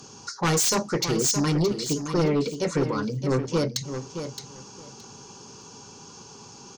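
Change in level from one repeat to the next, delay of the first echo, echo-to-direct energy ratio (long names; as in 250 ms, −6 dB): −15.0 dB, 619 ms, −9.0 dB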